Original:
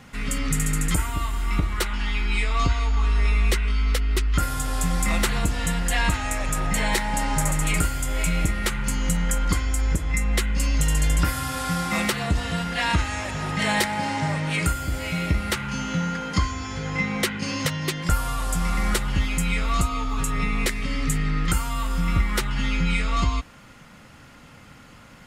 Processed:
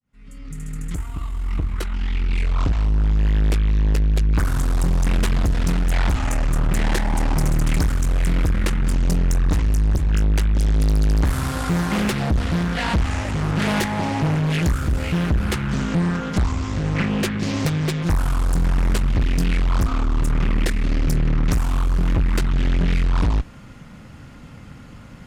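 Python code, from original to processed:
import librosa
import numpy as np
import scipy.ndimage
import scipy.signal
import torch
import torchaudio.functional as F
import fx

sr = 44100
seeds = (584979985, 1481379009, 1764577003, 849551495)

y = fx.fade_in_head(x, sr, length_s=4.15)
y = fx.low_shelf(y, sr, hz=370.0, db=11.5)
y = fx.tube_stage(y, sr, drive_db=16.0, bias=0.5)
y = fx.doppler_dist(y, sr, depth_ms=0.58)
y = F.gain(torch.from_numpy(y), 1.5).numpy()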